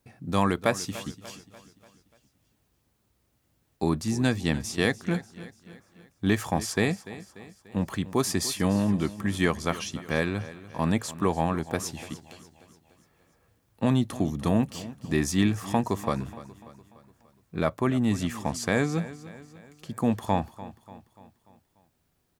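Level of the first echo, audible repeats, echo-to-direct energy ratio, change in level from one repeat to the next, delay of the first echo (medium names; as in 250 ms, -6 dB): -16.5 dB, 4, -15.0 dB, -6.0 dB, 293 ms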